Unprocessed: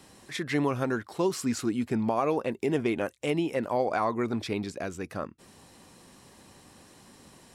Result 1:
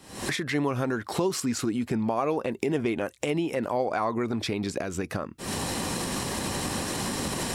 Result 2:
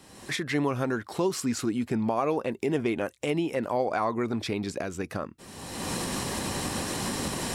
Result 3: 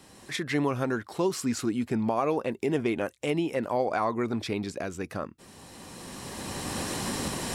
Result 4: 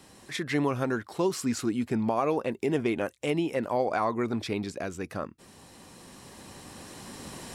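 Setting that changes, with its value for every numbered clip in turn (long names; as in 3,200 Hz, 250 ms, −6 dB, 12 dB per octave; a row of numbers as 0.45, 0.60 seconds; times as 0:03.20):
camcorder AGC, rising by: 89, 34, 14, 5.5 dB per second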